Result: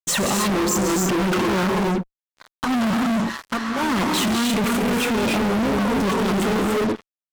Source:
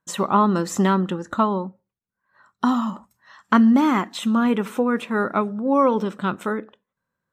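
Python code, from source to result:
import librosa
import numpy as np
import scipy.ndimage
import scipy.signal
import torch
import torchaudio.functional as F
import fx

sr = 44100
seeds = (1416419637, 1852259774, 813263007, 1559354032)

y = fx.envelope_sharpen(x, sr, power=2.0, at=(0.43, 1.39))
y = fx.over_compress(y, sr, threshold_db=-24.0, ratio=-1.0)
y = fx.env_flanger(y, sr, rest_ms=8.9, full_db=-19.5)
y = fx.rev_gated(y, sr, seeds[0], gate_ms=340, shape='rising', drr_db=1.0)
y = fx.fuzz(y, sr, gain_db=38.0, gate_db=-47.0)
y = y * librosa.db_to_amplitude(-6.0)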